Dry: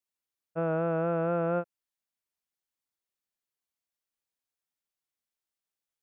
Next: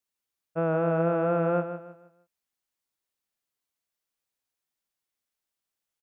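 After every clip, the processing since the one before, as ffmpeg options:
ffmpeg -i in.wav -af "aecho=1:1:158|316|474|632:0.316|0.101|0.0324|0.0104,volume=3dB" out.wav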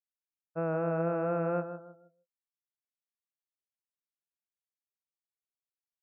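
ffmpeg -i in.wav -af "afftdn=noise_reduction=24:noise_floor=-52,volume=-5.5dB" out.wav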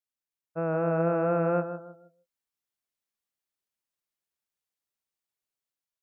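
ffmpeg -i in.wav -af "dynaudnorm=framelen=270:gausssize=5:maxgain=5dB" out.wav

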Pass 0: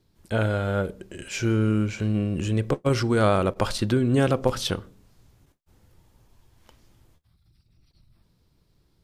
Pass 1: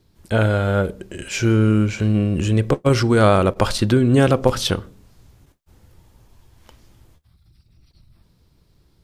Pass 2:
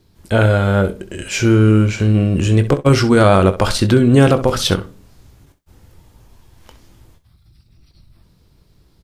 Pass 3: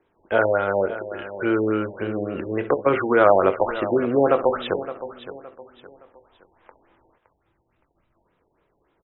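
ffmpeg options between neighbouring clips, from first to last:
ffmpeg -i in.wav -af "equalizer=frequency=66:width_type=o:width=0.77:gain=3.5,volume=6dB" out.wav
ffmpeg -i in.wav -filter_complex "[0:a]asplit=2[link_01][link_02];[link_02]aecho=0:1:21|65:0.282|0.178[link_03];[link_01][link_03]amix=inputs=2:normalize=0,alimiter=level_in=5dB:limit=-1dB:release=50:level=0:latency=1,volume=-1dB" out.wav
ffmpeg -i in.wav -filter_complex "[0:a]acrossover=split=350 2700:gain=0.0708 1 0.0891[link_01][link_02][link_03];[link_01][link_02][link_03]amix=inputs=3:normalize=0,aecho=1:1:566|1132|1698:0.211|0.0719|0.0244,afftfilt=real='re*lt(b*sr/1024,930*pow(4000/930,0.5+0.5*sin(2*PI*3.5*pts/sr)))':imag='im*lt(b*sr/1024,930*pow(4000/930,0.5+0.5*sin(2*PI*3.5*pts/sr)))':win_size=1024:overlap=0.75,volume=-1dB" out.wav

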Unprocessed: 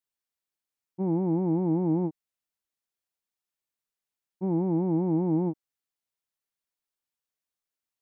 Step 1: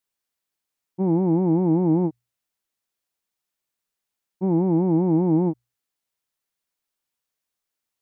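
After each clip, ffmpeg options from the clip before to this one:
ffmpeg -i in.wav -af "bandreject=frequency=60:width_type=h:width=6,bandreject=frequency=120:width_type=h:width=6,volume=6dB" out.wav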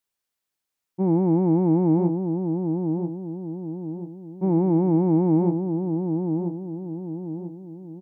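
ffmpeg -i in.wav -filter_complex "[0:a]asplit=2[link_01][link_02];[link_02]adelay=988,lowpass=frequency=850:poles=1,volume=-5dB,asplit=2[link_03][link_04];[link_04]adelay=988,lowpass=frequency=850:poles=1,volume=0.47,asplit=2[link_05][link_06];[link_06]adelay=988,lowpass=frequency=850:poles=1,volume=0.47,asplit=2[link_07][link_08];[link_08]adelay=988,lowpass=frequency=850:poles=1,volume=0.47,asplit=2[link_09][link_10];[link_10]adelay=988,lowpass=frequency=850:poles=1,volume=0.47,asplit=2[link_11][link_12];[link_12]adelay=988,lowpass=frequency=850:poles=1,volume=0.47[link_13];[link_01][link_03][link_05][link_07][link_09][link_11][link_13]amix=inputs=7:normalize=0" out.wav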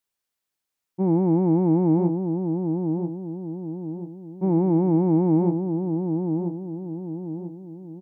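ffmpeg -i in.wav -af anull out.wav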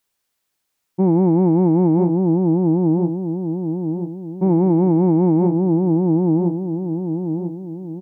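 ffmpeg -i in.wav -af "alimiter=limit=-18.5dB:level=0:latency=1:release=131,volume=9dB" out.wav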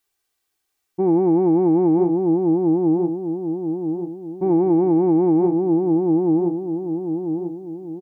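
ffmpeg -i in.wav -af "aecho=1:1:2.6:0.63,volume=-2.5dB" out.wav

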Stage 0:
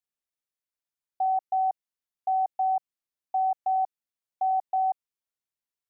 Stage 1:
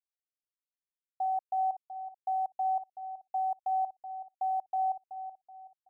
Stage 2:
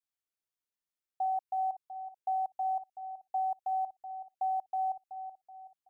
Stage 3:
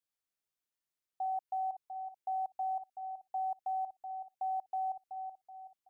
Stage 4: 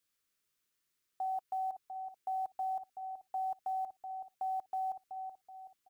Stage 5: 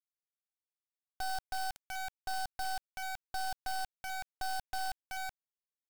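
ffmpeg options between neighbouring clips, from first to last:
ffmpeg -i in.wav -filter_complex "[0:a]acrusher=bits=10:mix=0:aa=0.000001,asplit=2[link_01][link_02];[link_02]adelay=377,lowpass=frequency=800:poles=1,volume=-8.5dB,asplit=2[link_03][link_04];[link_04]adelay=377,lowpass=frequency=800:poles=1,volume=0.47,asplit=2[link_05][link_06];[link_06]adelay=377,lowpass=frequency=800:poles=1,volume=0.47,asplit=2[link_07][link_08];[link_08]adelay=377,lowpass=frequency=800:poles=1,volume=0.47,asplit=2[link_09][link_10];[link_10]adelay=377,lowpass=frequency=800:poles=1,volume=0.47[link_11];[link_03][link_05][link_07][link_09][link_11]amix=inputs=5:normalize=0[link_12];[link_01][link_12]amix=inputs=2:normalize=0,volume=-5.5dB" out.wav
ffmpeg -i in.wav -af "adynamicequalizer=threshold=0.00631:dfrequency=540:dqfactor=1:tfrequency=540:tqfactor=1:attack=5:release=100:ratio=0.375:range=3:mode=cutabove:tftype=bell" out.wav
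ffmpeg -i in.wav -af "alimiter=level_in=7dB:limit=-24dB:level=0:latency=1:release=59,volume=-7dB" out.wav
ffmpeg -i in.wav -af "firequalizer=gain_entry='entry(420,0);entry(760,-9);entry(1200,1)':delay=0.05:min_phase=1,volume=8dB" out.wav
ffmpeg -i in.wav -af "acrusher=bits=4:dc=4:mix=0:aa=0.000001,volume=3.5dB" out.wav

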